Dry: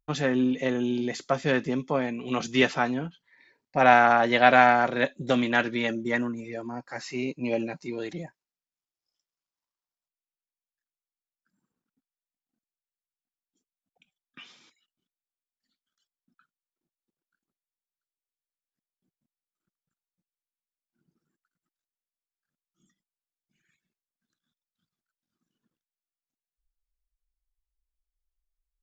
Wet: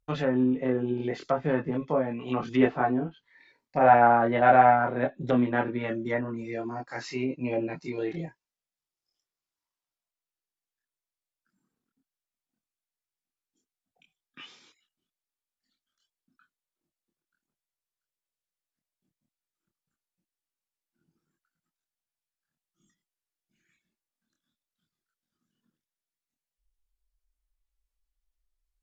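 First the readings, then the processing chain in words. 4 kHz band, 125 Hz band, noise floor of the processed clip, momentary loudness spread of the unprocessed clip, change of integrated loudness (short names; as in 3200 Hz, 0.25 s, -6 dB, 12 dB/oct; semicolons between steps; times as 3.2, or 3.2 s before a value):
-11.5 dB, +1.5 dB, under -85 dBFS, 17 LU, -1.0 dB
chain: chorus voices 4, 0.13 Hz, delay 25 ms, depth 1.8 ms; treble ducked by the level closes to 1200 Hz, closed at -27 dBFS; gain +3.5 dB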